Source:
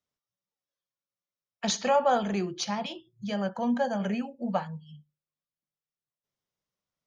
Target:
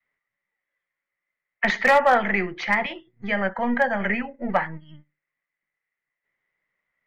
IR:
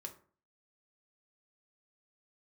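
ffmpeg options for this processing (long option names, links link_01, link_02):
-filter_complex "[0:a]adynamicequalizer=threshold=0.01:dfrequency=400:dqfactor=1:tfrequency=400:tqfactor=1:attack=5:release=100:ratio=0.375:range=2:mode=cutabove:tftype=bell,acrossover=split=260|890[link_01][link_02][link_03];[link_01]aeval=exprs='max(val(0),0)':channel_layout=same[link_04];[link_04][link_02][link_03]amix=inputs=3:normalize=0,acontrast=49,lowpass=frequency=2000:width_type=q:width=14,volume=10.5dB,asoftclip=hard,volume=-10.5dB"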